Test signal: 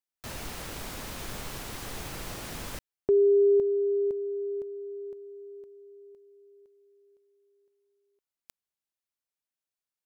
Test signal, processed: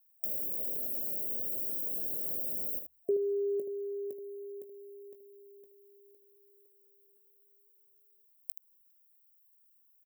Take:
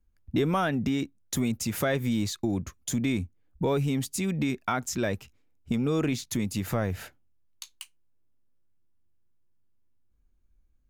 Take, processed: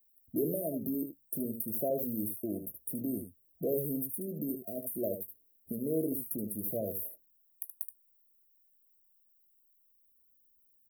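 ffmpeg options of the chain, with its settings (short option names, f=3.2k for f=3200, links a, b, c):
-filter_complex "[0:a]aemphasis=mode=production:type=bsi,bandreject=f=63.22:t=h:w=4,bandreject=f=126.44:t=h:w=4,afftfilt=real='re*(1-between(b*sr/4096,680,8500))':imag='im*(1-between(b*sr/4096,680,8500))':win_size=4096:overlap=0.75,lowshelf=f=120:g=-9.5,acrossover=split=2700[a][b];[b]acompressor=threshold=-40dB:ratio=10:attack=19:release=163:knee=1:detection=rms[c];[a][c]amix=inputs=2:normalize=0,aexciter=amount=1.8:drive=1.8:freq=5.2k,asplit=2[d][e];[e]aecho=0:1:19|76:0.266|0.398[f];[d][f]amix=inputs=2:normalize=0,volume=-2.5dB"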